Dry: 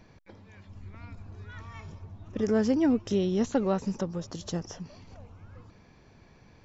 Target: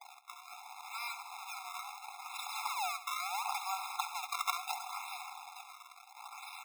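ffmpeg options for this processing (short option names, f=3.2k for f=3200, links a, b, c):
-filter_complex "[0:a]agate=range=-33dB:threshold=-52dB:ratio=3:detection=peak,asplit=2[a][b];[b]alimiter=limit=-24dB:level=0:latency=1:release=32,volume=-2.5dB[c];[a][c]amix=inputs=2:normalize=0,acompressor=threshold=-31dB:ratio=10,acrusher=bits=9:mix=0:aa=0.000001,crystalizer=i=4.5:c=0,acrusher=samples=30:mix=1:aa=0.000001:lfo=1:lforange=48:lforate=0.73,asplit=2[d][e];[e]aecho=0:1:68|136|204|272|340:0.224|0.107|0.0516|0.0248|0.0119[f];[d][f]amix=inputs=2:normalize=0,afftfilt=real='re*eq(mod(floor(b*sr/1024/690),2),1)':imag='im*eq(mod(floor(b*sr/1024/690),2),1)':win_size=1024:overlap=0.75,volume=5dB"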